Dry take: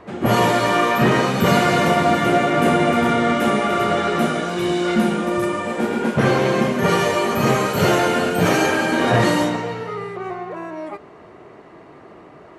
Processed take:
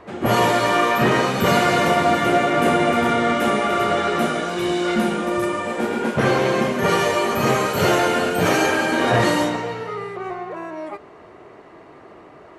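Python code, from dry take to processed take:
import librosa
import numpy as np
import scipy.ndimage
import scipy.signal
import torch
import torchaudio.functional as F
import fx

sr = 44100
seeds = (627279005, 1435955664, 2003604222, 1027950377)

y = fx.peak_eq(x, sr, hz=170.0, db=-4.5, octaves=1.3)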